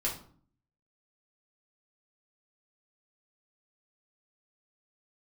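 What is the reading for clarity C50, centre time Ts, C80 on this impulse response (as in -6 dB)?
8.0 dB, 24 ms, 13.0 dB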